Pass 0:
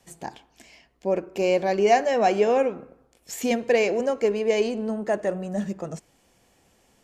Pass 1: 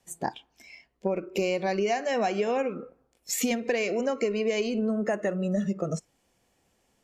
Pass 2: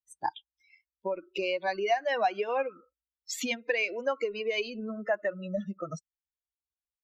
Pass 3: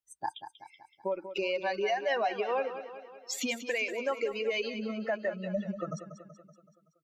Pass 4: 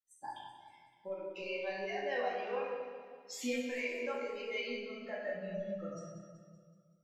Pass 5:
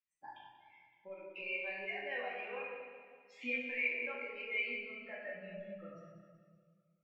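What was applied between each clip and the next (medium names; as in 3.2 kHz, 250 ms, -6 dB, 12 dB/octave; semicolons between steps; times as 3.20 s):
spectral noise reduction 14 dB; dynamic bell 520 Hz, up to -5 dB, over -30 dBFS, Q 0.84; compression 12:1, threshold -29 dBFS, peak gain reduction 13 dB; trim +6 dB
expander on every frequency bin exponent 2; three-band isolator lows -12 dB, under 560 Hz, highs -18 dB, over 5 kHz; trim +6 dB
peak limiter -22 dBFS, peak gain reduction 6 dB; on a send: feedback delay 189 ms, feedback 55%, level -11 dB
chord resonator E2 minor, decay 0.27 s; flange 1.1 Hz, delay 9.9 ms, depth 7.4 ms, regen +56%; simulated room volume 570 m³, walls mixed, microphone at 2.2 m; trim +3 dB
resonant low-pass 2.4 kHz, resonance Q 5.5; trim -8 dB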